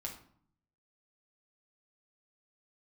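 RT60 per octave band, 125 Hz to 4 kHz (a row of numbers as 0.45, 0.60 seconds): 1.0, 0.85, 0.55, 0.60, 0.45, 0.40 seconds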